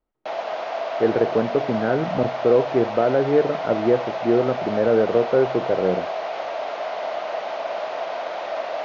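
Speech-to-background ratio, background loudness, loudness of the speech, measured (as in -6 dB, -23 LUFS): 6.5 dB, -28.0 LUFS, -21.5 LUFS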